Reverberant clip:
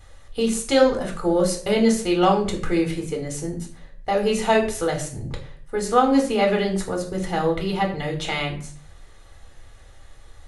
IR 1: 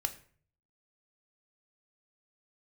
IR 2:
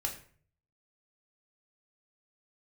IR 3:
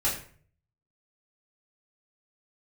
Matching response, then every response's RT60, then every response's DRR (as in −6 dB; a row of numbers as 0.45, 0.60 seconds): 2; 0.50, 0.50, 0.50 seconds; 7.0, 0.5, −9.5 decibels